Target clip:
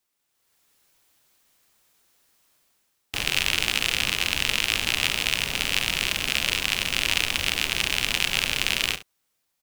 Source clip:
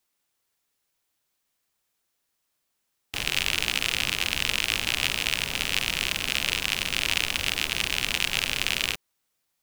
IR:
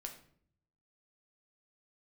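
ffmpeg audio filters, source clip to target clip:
-af "aecho=1:1:35|69:0.141|0.178,dynaudnorm=framelen=140:gausssize=7:maxgain=13dB,volume=-1dB"

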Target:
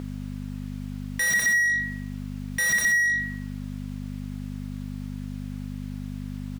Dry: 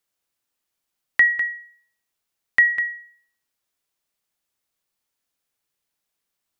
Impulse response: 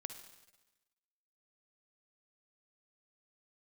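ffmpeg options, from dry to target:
-filter_complex "[0:a]alimiter=limit=-18dB:level=0:latency=1:release=22,aeval=exprs='(mod(14.1*val(0)+1,2)-1)/14.1':channel_layout=same,aecho=1:1:67|78:0.211|0.266,aeval=exprs='val(0)+0.00398*(sin(2*PI*50*n/s)+sin(2*PI*2*50*n/s)/2+sin(2*PI*3*50*n/s)/3+sin(2*PI*4*50*n/s)/4+sin(2*PI*5*50*n/s)/5)':channel_layout=same,asplit=2[link_01][link_02];[link_02]highpass=frequency=720:poles=1,volume=34dB,asoftclip=type=tanh:threshold=-19dB[link_03];[link_01][link_03]amix=inputs=2:normalize=0,lowpass=frequency=2100:poles=1,volume=-6dB,volume=6dB"

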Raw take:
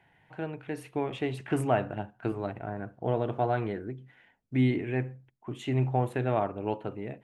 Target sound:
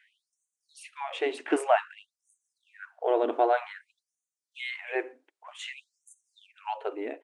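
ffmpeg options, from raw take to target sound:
ffmpeg -i in.wav -af "aresample=22050,aresample=44100,afftfilt=real='re*gte(b*sr/1024,250*pow(6000/250,0.5+0.5*sin(2*PI*0.53*pts/sr)))':imag='im*gte(b*sr/1024,250*pow(6000/250,0.5+0.5*sin(2*PI*0.53*pts/sr)))':win_size=1024:overlap=0.75,volume=5dB" out.wav

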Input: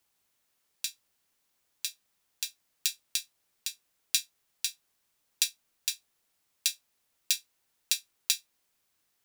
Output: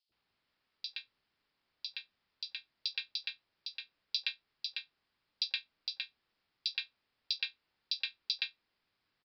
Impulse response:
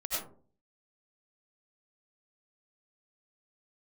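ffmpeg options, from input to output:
-filter_complex "[0:a]aresample=11025,aresample=44100,acrossover=split=630|3700[link_01][link_02][link_03];[link_01]adelay=90[link_04];[link_02]adelay=120[link_05];[link_04][link_05][link_03]amix=inputs=3:normalize=0,volume=1dB"

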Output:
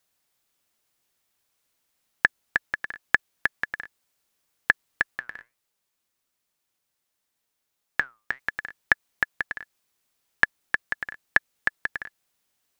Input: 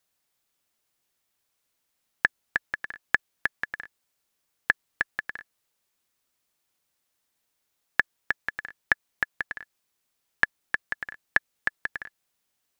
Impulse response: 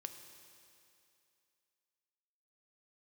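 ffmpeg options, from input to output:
-filter_complex "[0:a]asplit=3[link_01][link_02][link_03];[link_01]afade=type=out:start_time=5.15:duration=0.02[link_04];[link_02]flanger=delay=4.7:depth=4.6:regen=81:speed=1.4:shape=sinusoidal,afade=type=in:start_time=5.15:duration=0.02,afade=type=out:start_time=8.38:duration=0.02[link_05];[link_03]afade=type=in:start_time=8.38:duration=0.02[link_06];[link_04][link_05][link_06]amix=inputs=3:normalize=0,volume=2.5dB"

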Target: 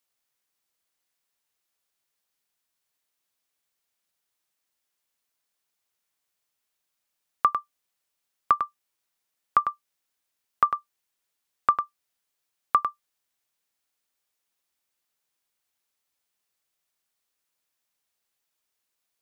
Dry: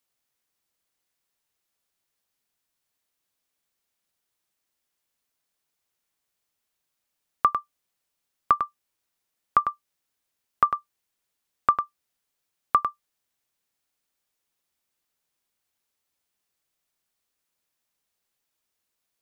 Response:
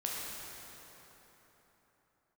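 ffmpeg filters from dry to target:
-af "lowshelf=frequency=420:gain=-5.5"

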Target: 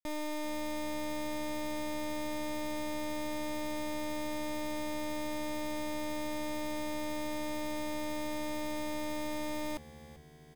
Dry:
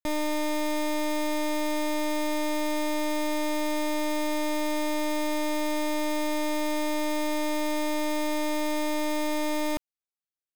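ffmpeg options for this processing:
ffmpeg -i in.wav -filter_complex "[0:a]asplit=6[link_01][link_02][link_03][link_04][link_05][link_06];[link_02]adelay=389,afreqshift=-79,volume=-17dB[link_07];[link_03]adelay=778,afreqshift=-158,volume=-21.7dB[link_08];[link_04]adelay=1167,afreqshift=-237,volume=-26.5dB[link_09];[link_05]adelay=1556,afreqshift=-316,volume=-31.2dB[link_10];[link_06]adelay=1945,afreqshift=-395,volume=-35.9dB[link_11];[link_01][link_07][link_08][link_09][link_10][link_11]amix=inputs=6:normalize=0,volume=-9dB" out.wav

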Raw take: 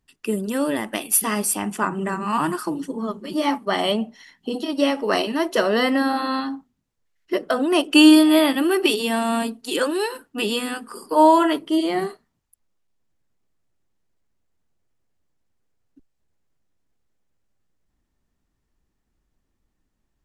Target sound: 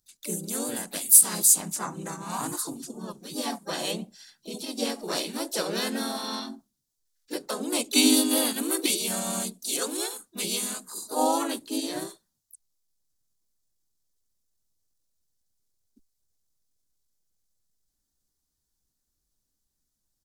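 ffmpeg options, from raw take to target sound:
ffmpeg -i in.wav -filter_complex "[0:a]asplit=4[link_01][link_02][link_03][link_04];[link_02]asetrate=35002,aresample=44100,atempo=1.25992,volume=-7dB[link_05];[link_03]asetrate=37084,aresample=44100,atempo=1.18921,volume=0dB[link_06];[link_04]asetrate=58866,aresample=44100,atempo=0.749154,volume=-10dB[link_07];[link_01][link_05][link_06][link_07]amix=inputs=4:normalize=0,aexciter=amount=4.8:drive=7.7:freq=3700,volume=-14.5dB" out.wav

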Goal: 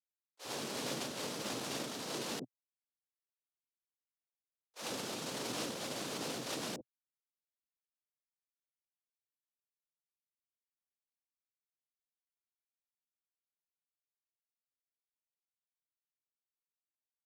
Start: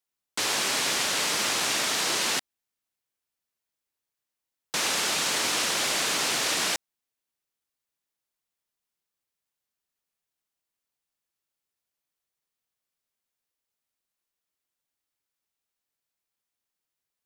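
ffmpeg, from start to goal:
ffmpeg -i in.wav -filter_complex "[0:a]agate=range=-51dB:threshold=-23dB:ratio=16:detection=peak,equalizer=frequency=125:width_type=o:width=1:gain=11,equalizer=frequency=250:width_type=o:width=1:gain=9,equalizer=frequency=500:width_type=o:width=1:gain=10,equalizer=frequency=2000:width_type=o:width=1:gain=-5,equalizer=frequency=8000:width_type=o:width=1:gain=-3,acrossover=split=480[link_01][link_02];[link_01]adelay=50[link_03];[link_03][link_02]amix=inputs=2:normalize=0,volume=3dB" out.wav

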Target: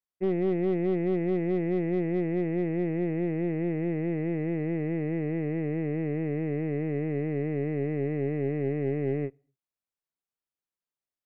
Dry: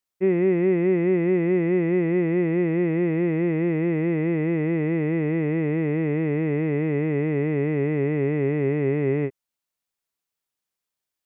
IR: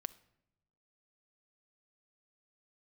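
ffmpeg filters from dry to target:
-filter_complex "[0:a]aeval=exprs='0.251*(cos(1*acos(clip(val(0)/0.251,-1,1)))-cos(1*PI/2))+0.0316*(cos(4*acos(clip(val(0)/0.251,-1,1)))-cos(4*PI/2))+0.0112*(cos(6*acos(clip(val(0)/0.251,-1,1)))-cos(6*PI/2))':channel_layout=same,highshelf=frequency=2000:gain=-8.5,asplit=2[link_01][link_02];[1:a]atrim=start_sample=2205,afade=type=out:start_time=0.31:duration=0.01,atrim=end_sample=14112[link_03];[link_02][link_03]afir=irnorm=-1:irlink=0,volume=-9.5dB[link_04];[link_01][link_04]amix=inputs=2:normalize=0,volume=-8.5dB"

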